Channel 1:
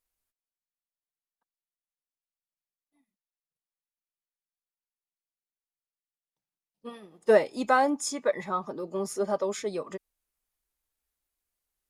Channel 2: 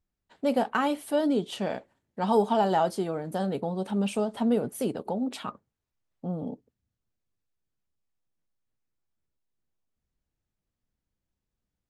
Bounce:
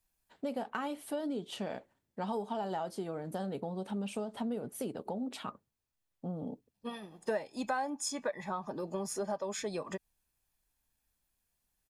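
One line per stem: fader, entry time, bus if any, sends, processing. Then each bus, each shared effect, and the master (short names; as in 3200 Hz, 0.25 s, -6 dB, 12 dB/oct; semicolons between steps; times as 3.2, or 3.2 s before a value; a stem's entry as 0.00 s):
+2.5 dB, 0.00 s, no send, comb 1.2 ms, depth 40%
-4.5 dB, 0.00 s, no send, dry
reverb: off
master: compressor 4:1, threshold -34 dBFS, peak gain reduction 18 dB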